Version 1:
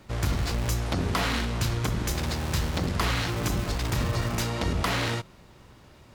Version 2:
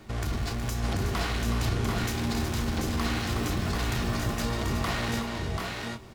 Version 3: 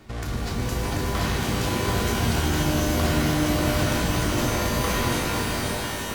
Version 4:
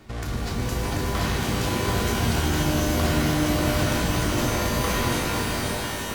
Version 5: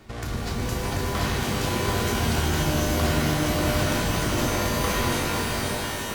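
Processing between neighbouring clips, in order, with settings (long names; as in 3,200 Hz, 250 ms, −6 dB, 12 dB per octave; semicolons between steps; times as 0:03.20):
brickwall limiter −24.5 dBFS, peak gain reduction 9.5 dB; multi-tap delay 369/737/759 ms −8/−4/−7.5 dB; on a send at −9 dB: convolution reverb RT60 0.15 s, pre-delay 3 ms; on the sum: level +1.5 dB
fade-out on the ending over 0.83 s; delay that swaps between a low-pass and a high-pass 260 ms, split 960 Hz, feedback 54%, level −3 dB; reverb with rising layers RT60 3 s, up +12 semitones, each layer −2 dB, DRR 2 dB
no processing that can be heard
mains-hum notches 60/120/180/240/300 Hz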